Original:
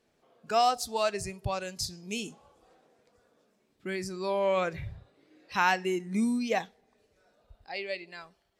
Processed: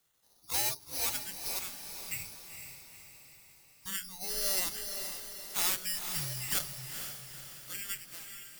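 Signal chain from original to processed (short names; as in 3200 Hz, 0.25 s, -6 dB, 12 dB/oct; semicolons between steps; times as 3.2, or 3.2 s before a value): careless resampling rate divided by 8×, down filtered, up zero stuff; hard clip -4.5 dBFS, distortion -14 dB; HPF 450 Hz 12 dB/oct; spectral gate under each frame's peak -10 dB weak; frequency shift -370 Hz; diffused feedback echo 0.472 s, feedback 51%, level -7 dB; gain -4 dB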